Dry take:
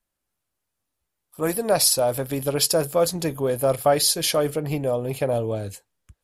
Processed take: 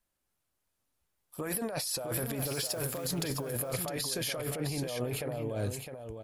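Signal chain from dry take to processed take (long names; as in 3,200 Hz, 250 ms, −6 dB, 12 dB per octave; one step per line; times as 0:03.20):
dynamic equaliser 1,800 Hz, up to +6 dB, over −41 dBFS, Q 1.1
brickwall limiter −16 dBFS, peak gain reduction 10 dB
compressor whose output falls as the input rises −30 dBFS, ratio −1
0:02.38–0:03.05: background noise white −50 dBFS
on a send: single-tap delay 659 ms −7 dB
on the sum: level −5 dB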